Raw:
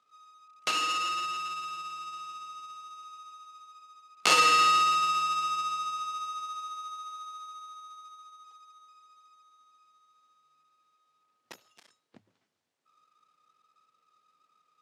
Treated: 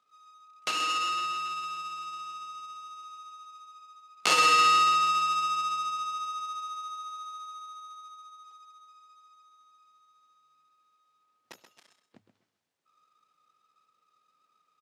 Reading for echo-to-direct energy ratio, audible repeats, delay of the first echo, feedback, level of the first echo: -10.0 dB, 2, 0.13 s, 20%, -10.0 dB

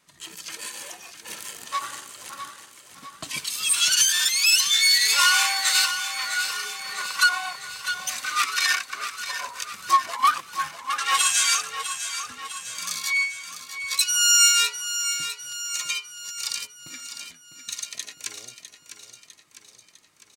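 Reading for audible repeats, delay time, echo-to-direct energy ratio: 6, 0.653 s, -8.5 dB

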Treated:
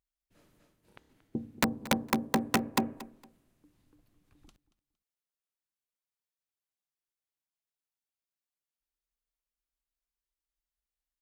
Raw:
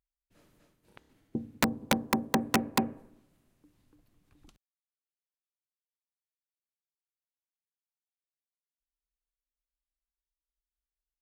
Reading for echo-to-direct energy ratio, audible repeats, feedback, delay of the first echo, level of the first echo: -18.0 dB, 2, 24%, 0.23 s, -18.0 dB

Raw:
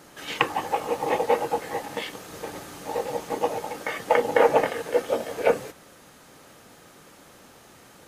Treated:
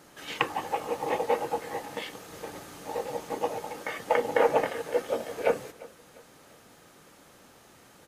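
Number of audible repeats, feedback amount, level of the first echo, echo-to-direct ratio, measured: 2, 39%, -21.5 dB, -21.0 dB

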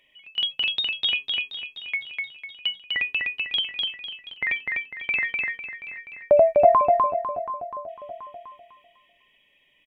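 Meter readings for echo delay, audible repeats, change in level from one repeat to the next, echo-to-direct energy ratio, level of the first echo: 0.729 s, 2, -7.5 dB, -14.5 dB, -15.0 dB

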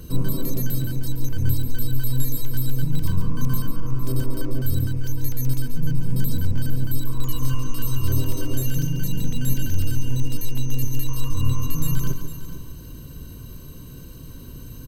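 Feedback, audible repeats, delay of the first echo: no steady repeat, 3, 0.14 s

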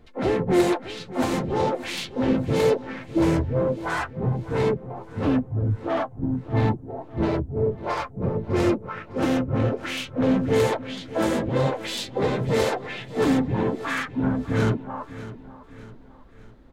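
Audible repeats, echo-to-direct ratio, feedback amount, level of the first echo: 3, -14.5 dB, 45%, -15.5 dB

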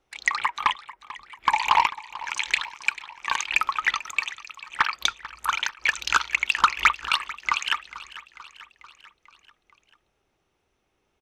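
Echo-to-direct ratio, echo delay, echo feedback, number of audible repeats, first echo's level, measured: -15.0 dB, 0.442 s, 58%, 4, -17.0 dB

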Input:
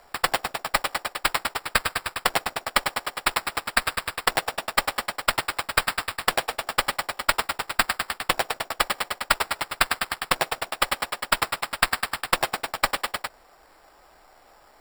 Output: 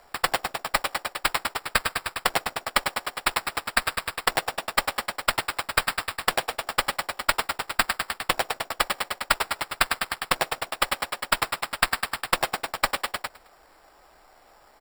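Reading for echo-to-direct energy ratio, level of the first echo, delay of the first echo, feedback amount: -19.0 dB, -19.5 dB, 0.107 s, 38%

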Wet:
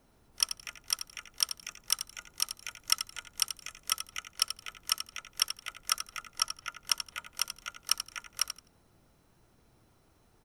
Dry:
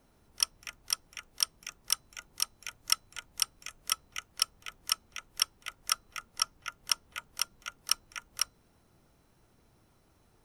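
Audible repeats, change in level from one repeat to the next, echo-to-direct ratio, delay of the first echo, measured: 2, -15.0 dB, -10.0 dB, 85 ms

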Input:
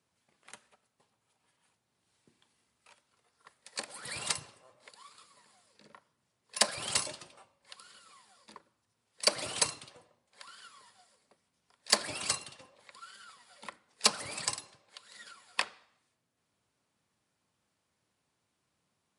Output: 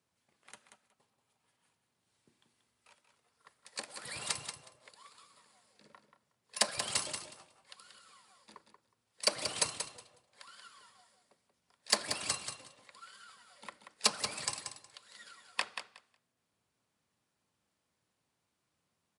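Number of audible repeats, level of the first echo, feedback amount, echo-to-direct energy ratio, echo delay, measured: 2, -8.0 dB, 16%, -8.0 dB, 0.183 s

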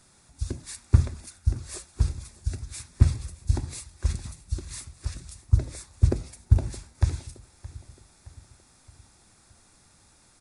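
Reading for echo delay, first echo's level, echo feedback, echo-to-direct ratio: 0.619 s, -19.0 dB, 50%, -18.0 dB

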